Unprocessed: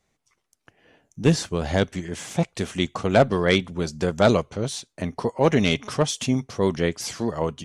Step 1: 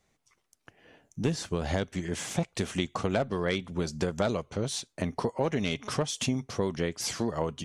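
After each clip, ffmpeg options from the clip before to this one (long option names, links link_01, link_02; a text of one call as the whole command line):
ffmpeg -i in.wav -af "acompressor=threshold=-25dB:ratio=6" out.wav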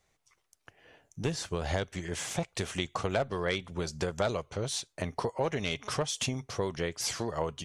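ffmpeg -i in.wav -af "equalizer=frequency=230:width=1.3:gain=-8.5" out.wav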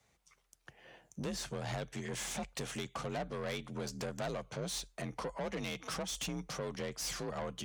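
ffmpeg -i in.wav -filter_complex "[0:a]asplit=2[link_01][link_02];[link_02]acompressor=threshold=-38dB:ratio=6,volume=2dB[link_03];[link_01][link_03]amix=inputs=2:normalize=0,aeval=exprs='(tanh(28.2*val(0)+0.4)-tanh(0.4))/28.2':channel_layout=same,afreqshift=42,volume=-5dB" out.wav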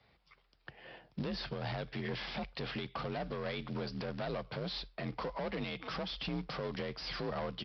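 ffmpeg -i in.wav -af "alimiter=level_in=10dB:limit=-24dB:level=0:latency=1:release=73,volume=-10dB,aresample=11025,acrusher=bits=5:mode=log:mix=0:aa=0.000001,aresample=44100,volume=5dB" out.wav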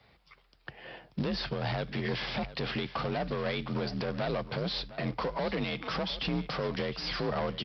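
ffmpeg -i in.wav -af "aecho=1:1:708:0.168,volume=6dB" out.wav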